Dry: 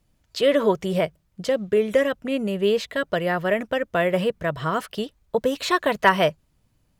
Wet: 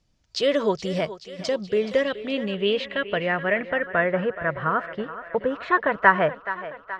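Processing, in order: thinning echo 0.425 s, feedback 65%, high-pass 290 Hz, level -13 dB; low-pass sweep 5600 Hz -> 1600 Hz, 1.5–4.16; gain -3 dB

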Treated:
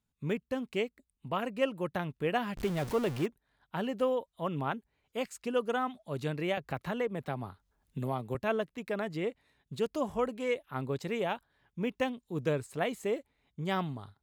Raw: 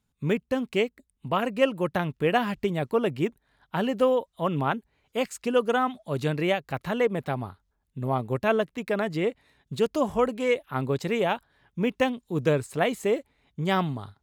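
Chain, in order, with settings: 2.57–3.26 zero-crossing step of -27.5 dBFS; 6.57–8.35 three-band squash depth 70%; gain -7.5 dB

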